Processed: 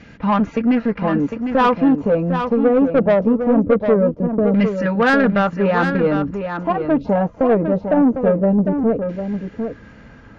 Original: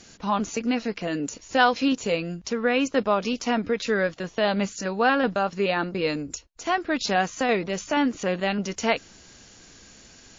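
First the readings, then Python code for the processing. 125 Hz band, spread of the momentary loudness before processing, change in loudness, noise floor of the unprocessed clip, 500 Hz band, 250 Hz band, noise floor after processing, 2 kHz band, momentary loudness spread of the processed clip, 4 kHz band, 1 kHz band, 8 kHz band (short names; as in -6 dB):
+12.5 dB, 7 LU, +7.5 dB, -52 dBFS, +9.0 dB, +10.5 dB, -43 dBFS, +2.0 dB, 7 LU, -6.5 dB, +4.0 dB, n/a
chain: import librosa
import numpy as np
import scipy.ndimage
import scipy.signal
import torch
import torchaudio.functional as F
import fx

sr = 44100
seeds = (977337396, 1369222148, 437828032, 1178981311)

y = fx.low_shelf(x, sr, hz=420.0, db=8.5)
y = fx.filter_lfo_lowpass(y, sr, shape='saw_down', hz=0.22, low_hz=370.0, high_hz=2200.0, q=1.9)
y = fx.notch_comb(y, sr, f0_hz=370.0)
y = 10.0 ** (-14.5 / 20.0) * np.tanh(y / 10.0 ** (-14.5 / 20.0))
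y = y + 10.0 ** (-7.5 / 20.0) * np.pad(y, (int(753 * sr / 1000.0), 0))[:len(y)]
y = y * 10.0 ** (5.5 / 20.0)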